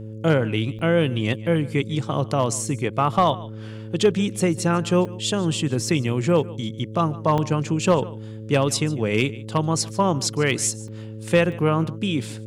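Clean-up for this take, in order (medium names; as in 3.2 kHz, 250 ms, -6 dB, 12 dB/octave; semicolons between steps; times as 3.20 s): clip repair -9 dBFS; de-hum 108.9 Hz, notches 5; interpolate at 0.79/5.05/7.38/10.88/11.52 s, 3.4 ms; inverse comb 147 ms -20 dB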